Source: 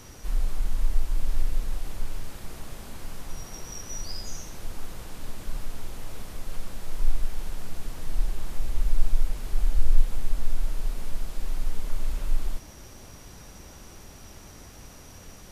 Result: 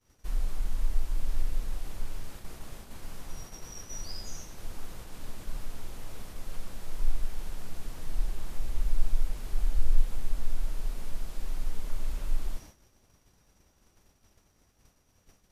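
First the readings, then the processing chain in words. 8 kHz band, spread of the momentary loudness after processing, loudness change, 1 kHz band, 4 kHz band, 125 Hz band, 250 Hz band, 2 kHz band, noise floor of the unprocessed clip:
can't be measured, 12 LU, −4.0 dB, −4.5 dB, −4.5 dB, −4.0 dB, −4.5 dB, −4.5 dB, −47 dBFS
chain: downward expander −34 dBFS
level −4 dB

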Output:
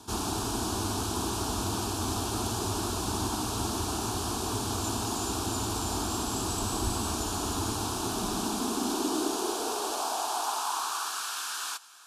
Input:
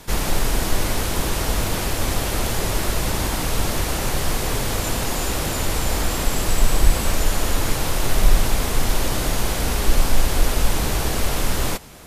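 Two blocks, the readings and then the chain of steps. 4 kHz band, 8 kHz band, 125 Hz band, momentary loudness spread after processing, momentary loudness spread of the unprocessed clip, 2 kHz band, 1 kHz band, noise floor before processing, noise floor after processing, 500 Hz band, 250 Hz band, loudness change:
−7.0 dB, −6.0 dB, −11.0 dB, 1 LU, 3 LU, −12.5 dB, −3.5 dB, −25 dBFS, −35 dBFS, −8.0 dB, −4.0 dB, −7.5 dB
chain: high-pass filter sweep 110 Hz → 1,600 Hz, 0:07.81–0:11.34
low-pass filter 9,400 Hz 12 dB per octave
phaser with its sweep stopped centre 540 Hz, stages 6
level −3.5 dB

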